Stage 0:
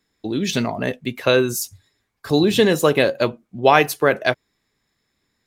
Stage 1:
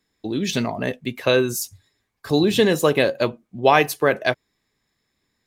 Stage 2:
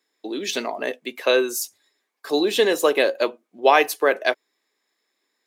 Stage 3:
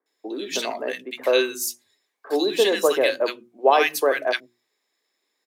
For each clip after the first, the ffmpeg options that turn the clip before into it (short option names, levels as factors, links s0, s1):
-af "bandreject=f=1400:w=20,volume=0.841"
-af "highpass=f=320:w=0.5412,highpass=f=320:w=1.3066"
-filter_complex "[0:a]bandreject=f=60:t=h:w=6,bandreject=f=120:t=h:w=6,bandreject=f=180:t=h:w=6,bandreject=f=240:t=h:w=6,bandreject=f=300:t=h:w=6,bandreject=f=360:t=h:w=6,acrossover=split=210|1400[s0][s1][s2];[s2]adelay=60[s3];[s0]adelay=130[s4];[s4][s1][s3]amix=inputs=3:normalize=0"